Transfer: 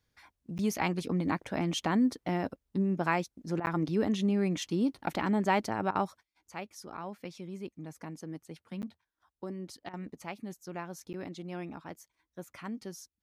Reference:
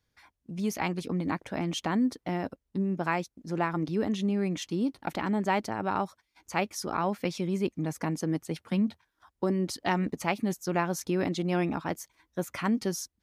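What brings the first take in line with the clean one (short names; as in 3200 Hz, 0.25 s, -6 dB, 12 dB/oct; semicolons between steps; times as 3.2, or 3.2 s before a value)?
interpolate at 0.58/3.66/8.82/11.13/12.52, 9.6 ms; interpolate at 3.6/5.91/9.89, 43 ms; gain 0 dB, from 6.23 s +12 dB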